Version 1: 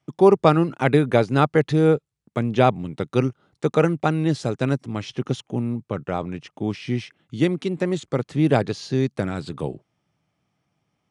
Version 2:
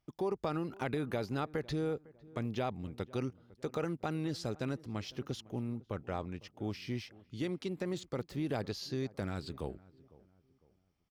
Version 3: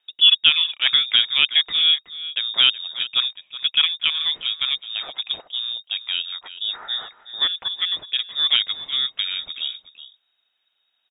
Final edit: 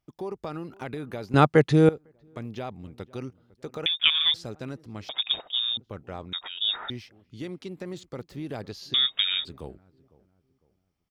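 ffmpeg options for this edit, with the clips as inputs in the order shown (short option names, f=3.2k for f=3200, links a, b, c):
-filter_complex "[2:a]asplit=4[a][b][c][d];[1:a]asplit=6[e][f][g][h][i][j];[e]atrim=end=1.342[k];[0:a]atrim=start=1.338:end=1.892[l];[f]atrim=start=1.888:end=3.862[m];[a]atrim=start=3.858:end=4.342[n];[g]atrim=start=4.338:end=5.092[o];[b]atrim=start=5.088:end=5.772[p];[h]atrim=start=5.768:end=6.332[q];[c]atrim=start=6.328:end=6.902[r];[i]atrim=start=6.898:end=8.942[s];[d]atrim=start=8.938:end=9.452[t];[j]atrim=start=9.448[u];[k][l]acrossfade=d=0.004:c1=hsin:c2=hsin[v];[v][m]acrossfade=d=0.004:c1=hsin:c2=hsin[w];[w][n]acrossfade=d=0.004:c1=hsin:c2=hsin[x];[x][o]acrossfade=d=0.004:c1=hsin:c2=hsin[y];[y][p]acrossfade=d=0.004:c1=hsin:c2=hsin[z];[z][q]acrossfade=d=0.004:c1=hsin:c2=hsin[aa];[aa][r]acrossfade=d=0.004:c1=hsin:c2=hsin[ab];[ab][s]acrossfade=d=0.004:c1=hsin:c2=hsin[ac];[ac][t]acrossfade=d=0.004:c1=hsin:c2=hsin[ad];[ad][u]acrossfade=d=0.004:c1=hsin:c2=hsin"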